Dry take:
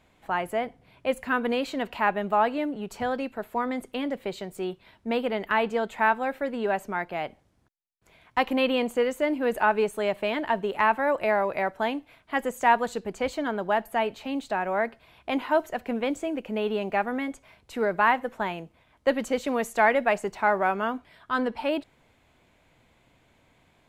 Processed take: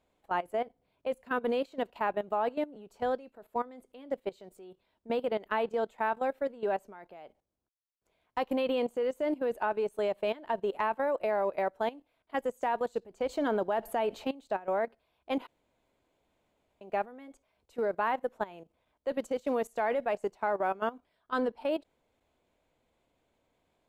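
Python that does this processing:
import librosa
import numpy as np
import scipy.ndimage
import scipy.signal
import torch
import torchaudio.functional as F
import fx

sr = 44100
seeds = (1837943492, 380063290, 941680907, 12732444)

y = fx.env_flatten(x, sr, amount_pct=50, at=(13.29, 14.31))
y = fx.edit(y, sr, fx.room_tone_fill(start_s=15.47, length_s=1.34), tone=tone)
y = fx.graphic_eq_10(y, sr, hz=(125, 500, 2000), db=(-6, 5, -5))
y = fx.level_steps(y, sr, step_db=13)
y = fx.upward_expand(y, sr, threshold_db=-42.0, expansion=1.5)
y = F.gain(torch.from_numpy(y), -2.0).numpy()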